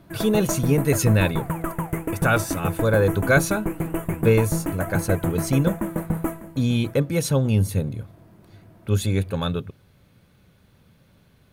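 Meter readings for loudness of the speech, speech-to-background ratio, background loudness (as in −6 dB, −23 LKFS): −23.0 LKFS, 5.5 dB, −28.5 LKFS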